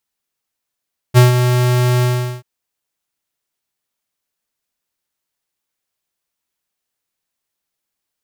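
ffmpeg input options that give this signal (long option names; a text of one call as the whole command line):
ffmpeg -f lavfi -i "aevalsrc='0.531*(2*lt(mod(124*t,1),0.5)-1)':duration=1.285:sample_rate=44100,afade=type=in:duration=0.035,afade=type=out:start_time=0.035:duration=0.143:silence=0.398,afade=type=out:start_time=0.88:duration=0.405" out.wav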